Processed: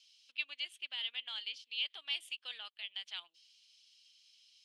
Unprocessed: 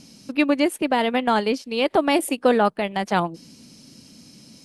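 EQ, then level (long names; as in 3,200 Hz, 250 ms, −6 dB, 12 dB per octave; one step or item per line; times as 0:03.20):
four-pole ladder band-pass 3,400 Hz, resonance 70%
−3.5 dB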